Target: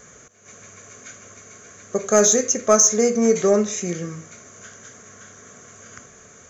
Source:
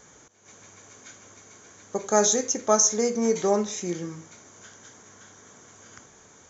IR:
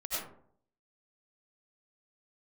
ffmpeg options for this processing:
-af "superequalizer=6b=0.501:9b=0.316:13b=0.562:14b=0.631,acontrast=66"

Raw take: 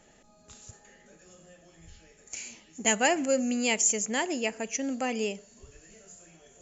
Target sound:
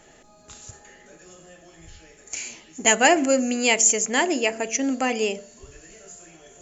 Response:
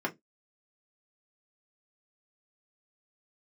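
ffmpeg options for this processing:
-filter_complex "[0:a]bandreject=frequency=74.8:width_type=h:width=4,bandreject=frequency=149.6:width_type=h:width=4,bandreject=frequency=224.4:width_type=h:width=4,bandreject=frequency=299.2:width_type=h:width=4,bandreject=frequency=374:width_type=h:width=4,bandreject=frequency=448.8:width_type=h:width=4,bandreject=frequency=523.6:width_type=h:width=4,bandreject=frequency=598.4:width_type=h:width=4,bandreject=frequency=673.2:width_type=h:width=4,bandreject=frequency=748:width_type=h:width=4,asplit=2[link_01][link_02];[1:a]atrim=start_sample=2205[link_03];[link_02][link_03]afir=irnorm=-1:irlink=0,volume=-17dB[link_04];[link_01][link_04]amix=inputs=2:normalize=0,volume=6.5dB"

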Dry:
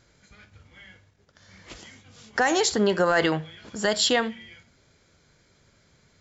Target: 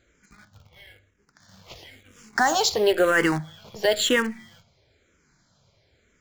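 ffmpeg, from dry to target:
ffmpeg -i in.wav -filter_complex "[0:a]equalizer=frequency=680:width=2.9:gain=2,asplit=2[link_01][link_02];[link_02]acrusher=bits=5:dc=4:mix=0:aa=0.000001,volume=-5dB[link_03];[link_01][link_03]amix=inputs=2:normalize=0,asplit=2[link_04][link_05];[link_05]afreqshift=-1[link_06];[link_04][link_06]amix=inputs=2:normalize=1" out.wav

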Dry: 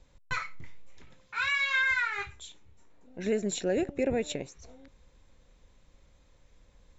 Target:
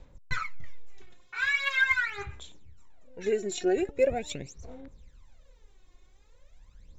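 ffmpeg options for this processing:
ffmpeg -i in.wav -af "aphaser=in_gain=1:out_gain=1:delay=2.8:decay=0.72:speed=0.42:type=sinusoidal,volume=-3dB" out.wav

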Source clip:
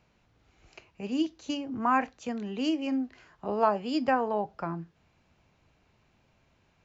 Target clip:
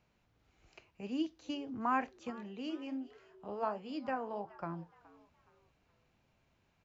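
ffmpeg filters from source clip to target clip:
ffmpeg -i in.wav -filter_complex "[0:a]acrossover=split=5000[link_01][link_02];[link_02]acompressor=threshold=-59dB:ratio=4:attack=1:release=60[link_03];[link_01][link_03]amix=inputs=2:normalize=0,asettb=1/sr,asplit=3[link_04][link_05][link_06];[link_04]atrim=end=2.304[link_07];[link_05]atrim=start=2.3:end=4.63,asetpts=PTS-STARTPTS,afade=type=in:duration=0.004:curve=qsin,afade=type=out:start_time=2.326:duration=0.004:curve=qsin,flanger=delay=5.1:depth=9.5:regen=-71:speed=1.3:shape=triangular[link_08];[link_06]atrim=start=4.626[link_09];[link_07][link_08]acrossfade=duration=0.004:curve1=hsin:curve2=qsin[link_10];[link_10][link_09]acrossfade=duration=0.004:curve1=qsin:curve2=hsin,asplit=4[link_11][link_12][link_13][link_14];[link_12]adelay=420,afreqshift=110,volume=-21dB[link_15];[link_13]adelay=840,afreqshift=220,volume=-29.9dB[link_16];[link_14]adelay=1260,afreqshift=330,volume=-38.7dB[link_17];[link_11][link_15][link_16][link_17]amix=inputs=4:normalize=0,volume=-7dB" out.wav

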